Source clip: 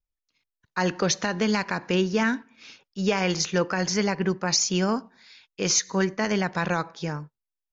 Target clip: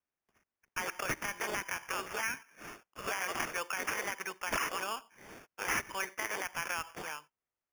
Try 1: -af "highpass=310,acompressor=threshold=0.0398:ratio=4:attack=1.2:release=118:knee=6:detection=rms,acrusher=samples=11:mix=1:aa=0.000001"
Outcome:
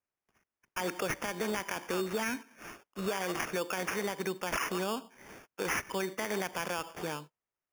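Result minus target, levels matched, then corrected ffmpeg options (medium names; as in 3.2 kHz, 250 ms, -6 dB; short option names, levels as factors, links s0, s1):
250 Hz band +9.0 dB
-af "highpass=1200,acompressor=threshold=0.0398:ratio=4:attack=1.2:release=118:knee=6:detection=rms,acrusher=samples=11:mix=1:aa=0.000001"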